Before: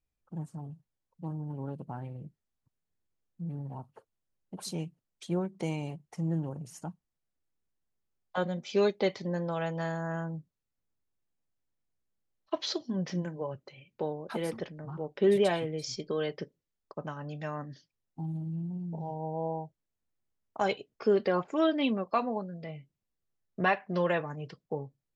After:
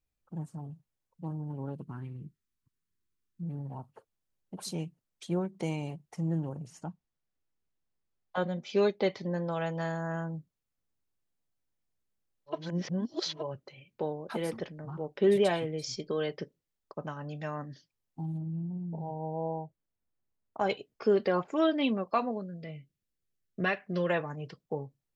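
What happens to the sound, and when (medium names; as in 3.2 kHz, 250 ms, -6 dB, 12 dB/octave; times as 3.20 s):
1.81–3.43 s: high-order bell 650 Hz -15 dB 1 oct
6.66–9.47 s: distance through air 62 m
12.58–13.37 s: reverse, crossfade 0.24 s
18.38–20.70 s: treble shelf 2.9 kHz -11 dB
22.31–24.09 s: peaking EQ 880 Hz -12.5 dB 0.67 oct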